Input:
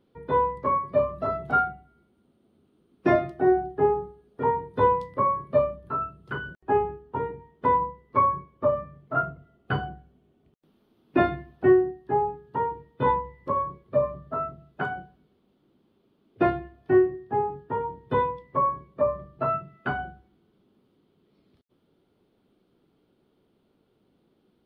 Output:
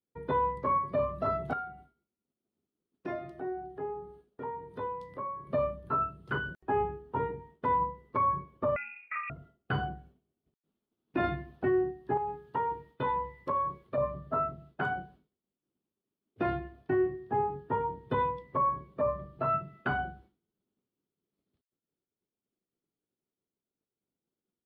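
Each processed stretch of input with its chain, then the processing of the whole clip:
1.53–5.47 s: peaking EQ 88 Hz -3.5 dB 2.3 oct + compression 2:1, threshold -46 dBFS
8.76–9.30 s: compression 5:1, threshold -33 dBFS + frequency inversion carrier 2.6 kHz
12.17–13.98 s: compression 4:1, threshold -27 dBFS + tilt shelf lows -3.5 dB, about 760 Hz
whole clip: expander -51 dBFS; dynamic bell 460 Hz, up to -4 dB, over -30 dBFS, Q 0.73; peak limiter -20.5 dBFS

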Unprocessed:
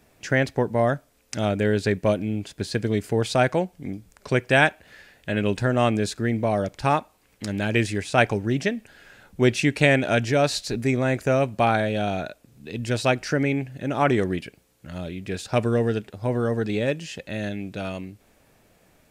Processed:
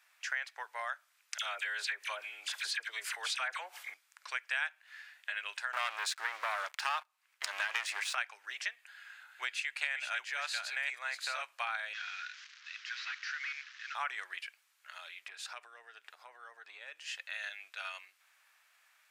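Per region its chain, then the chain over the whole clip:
1.38–3.94 s: phase dispersion lows, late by 51 ms, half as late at 1.7 kHz + level flattener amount 50%
5.73–8.15 s: bass shelf 460 Hz +10 dB + waveshaping leveller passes 3
8.73–11.42 s: chunks repeated in reverse 544 ms, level -4 dB + band-stop 5.6 kHz, Q 10
11.93–13.95 s: one-bit delta coder 32 kbps, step -37 dBFS + Chebyshev high-pass 1.5 kHz, order 3
15.26–17.13 s: peaking EQ 180 Hz +14.5 dB 2.9 oct + compression 5:1, threshold -25 dBFS
whole clip: inverse Chebyshev high-pass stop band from 200 Hz, stop band 80 dB; treble shelf 4 kHz -8.5 dB; compression 3:1, threshold -35 dBFS

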